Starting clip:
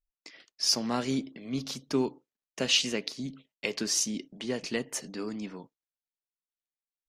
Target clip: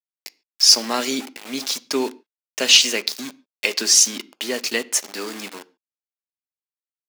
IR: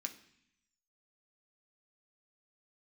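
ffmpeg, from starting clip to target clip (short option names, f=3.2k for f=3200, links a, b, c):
-filter_complex "[0:a]aeval=exprs='val(0)*gte(abs(val(0)),0.00944)':c=same,highpass=350,highshelf=f=2.7k:g=7.5,acontrast=85,asplit=2[a][b];[1:a]atrim=start_sample=2205,atrim=end_sample=6615,highshelf=f=8.3k:g=-12[c];[b][c]afir=irnorm=-1:irlink=0,volume=-4dB[d];[a][d]amix=inputs=2:normalize=0,volume=-1dB"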